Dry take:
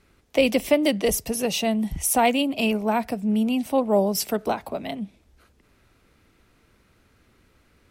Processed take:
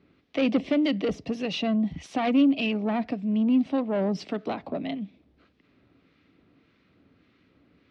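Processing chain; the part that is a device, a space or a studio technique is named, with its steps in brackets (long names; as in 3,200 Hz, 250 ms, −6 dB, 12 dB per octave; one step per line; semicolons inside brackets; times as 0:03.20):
guitar amplifier with harmonic tremolo (two-band tremolo in antiphase 1.7 Hz, depth 50%, crossover 1,100 Hz; soft clipping −21.5 dBFS, distortion −11 dB; loudspeaker in its box 97–4,200 Hz, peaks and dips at 170 Hz +5 dB, 280 Hz +9 dB, 910 Hz −5 dB, 1,500 Hz −4 dB)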